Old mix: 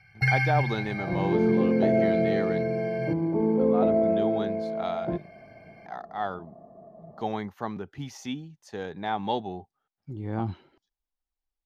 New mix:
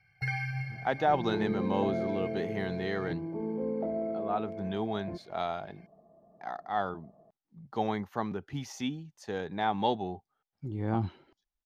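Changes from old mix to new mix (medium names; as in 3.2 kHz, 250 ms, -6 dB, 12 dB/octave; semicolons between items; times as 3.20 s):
speech: entry +0.55 s; first sound -9.5 dB; second sound -10.5 dB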